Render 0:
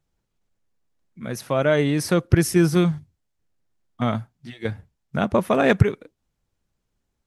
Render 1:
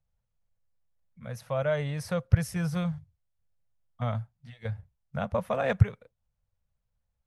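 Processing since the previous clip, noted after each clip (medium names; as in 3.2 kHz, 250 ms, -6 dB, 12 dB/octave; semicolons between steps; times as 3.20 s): FFT filter 110 Hz 0 dB, 230 Hz -12 dB, 340 Hz -28 dB, 500 Hz -5 dB, 7.2 kHz -12 dB; trim -2 dB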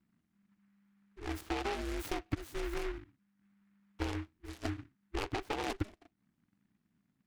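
ring modulator 200 Hz; compression 12:1, threshold -36 dBFS, peak gain reduction 21 dB; delay time shaken by noise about 1.5 kHz, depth 0.14 ms; trim +4 dB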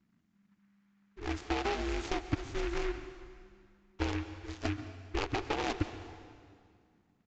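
rattle on loud lows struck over -35 dBFS, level -34 dBFS; plate-style reverb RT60 2.2 s, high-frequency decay 0.85×, pre-delay 110 ms, DRR 11 dB; resampled via 16 kHz; trim +3 dB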